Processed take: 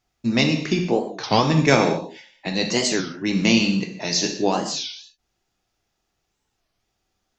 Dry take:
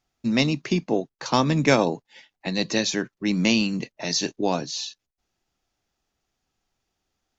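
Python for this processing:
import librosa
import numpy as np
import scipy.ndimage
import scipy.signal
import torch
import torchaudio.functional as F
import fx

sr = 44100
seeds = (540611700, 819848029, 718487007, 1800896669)

y = fx.rev_gated(x, sr, seeds[0], gate_ms=250, shape='falling', drr_db=2.5)
y = fx.record_warp(y, sr, rpm=33.33, depth_cents=250.0)
y = y * librosa.db_to_amplitude(1.5)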